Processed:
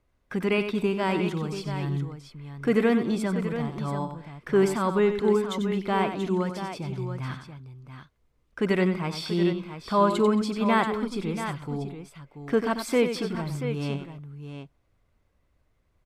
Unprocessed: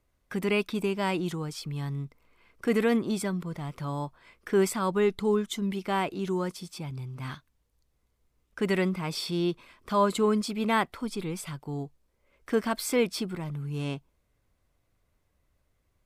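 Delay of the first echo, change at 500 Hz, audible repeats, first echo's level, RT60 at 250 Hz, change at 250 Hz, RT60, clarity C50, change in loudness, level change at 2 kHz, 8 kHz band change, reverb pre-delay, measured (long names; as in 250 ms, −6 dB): 93 ms, +3.0 dB, 3, −9.0 dB, no reverb audible, +3.5 dB, no reverb audible, no reverb audible, +3.0 dB, +2.0 dB, −4.0 dB, no reverb audible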